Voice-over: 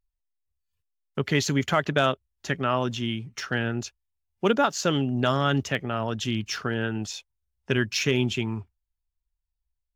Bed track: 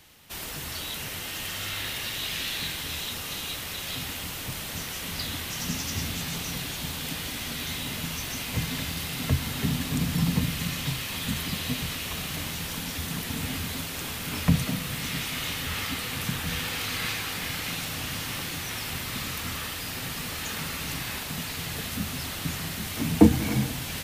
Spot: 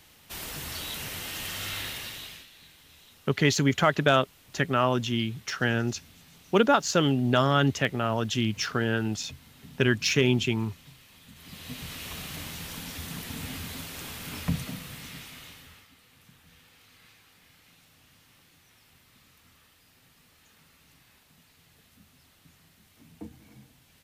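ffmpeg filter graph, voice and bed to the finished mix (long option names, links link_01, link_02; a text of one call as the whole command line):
ffmpeg -i stem1.wav -i stem2.wav -filter_complex "[0:a]adelay=2100,volume=1dB[link_01];[1:a]volume=15dB,afade=type=out:start_time=1.76:duration=0.71:silence=0.0944061,afade=type=in:start_time=11.35:duration=0.7:silence=0.149624,afade=type=out:start_time=14.26:duration=1.61:silence=0.0841395[link_02];[link_01][link_02]amix=inputs=2:normalize=0" out.wav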